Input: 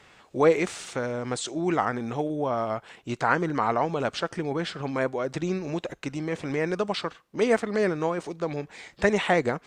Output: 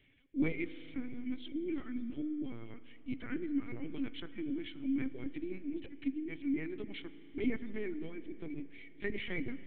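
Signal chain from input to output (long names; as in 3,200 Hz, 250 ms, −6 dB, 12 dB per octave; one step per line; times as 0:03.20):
reverb reduction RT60 0.56 s
formant filter i
high-shelf EQ 2,200 Hz −4.5 dB
linear-prediction vocoder at 8 kHz pitch kept
spring reverb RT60 3.3 s, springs 32/38 ms, chirp 60 ms, DRR 13.5 dB
level +2.5 dB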